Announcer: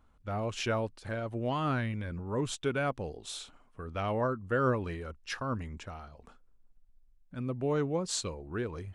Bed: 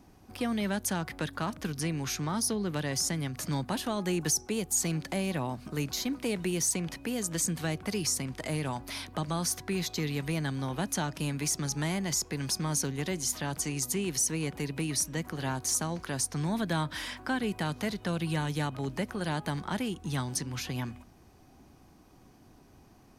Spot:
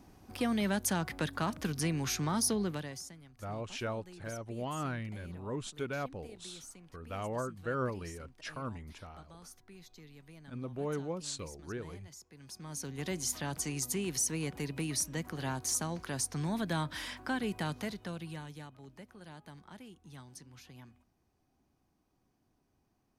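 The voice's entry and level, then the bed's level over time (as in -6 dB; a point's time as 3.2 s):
3.15 s, -6.0 dB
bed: 2.63 s -0.5 dB
3.2 s -22.5 dB
12.3 s -22.5 dB
13.1 s -3.5 dB
17.7 s -3.5 dB
18.77 s -18.5 dB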